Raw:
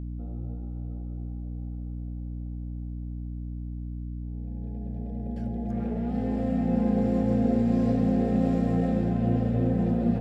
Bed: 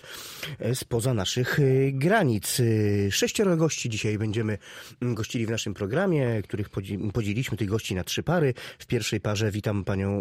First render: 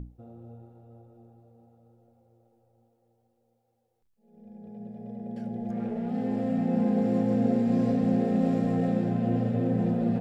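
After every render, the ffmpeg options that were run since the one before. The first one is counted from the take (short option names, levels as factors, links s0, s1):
-af "bandreject=f=60:t=h:w=6,bandreject=f=120:t=h:w=6,bandreject=f=180:t=h:w=6,bandreject=f=240:t=h:w=6,bandreject=f=300:t=h:w=6,bandreject=f=360:t=h:w=6"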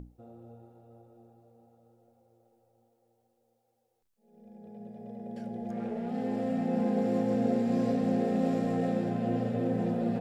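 -af "bass=f=250:g=-7,treble=f=4000:g=3"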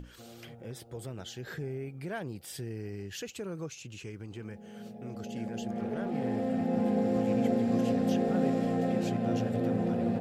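-filter_complex "[1:a]volume=0.158[s0];[0:a][s0]amix=inputs=2:normalize=0"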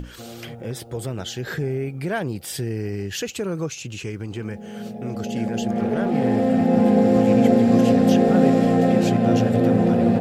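-af "volume=3.98"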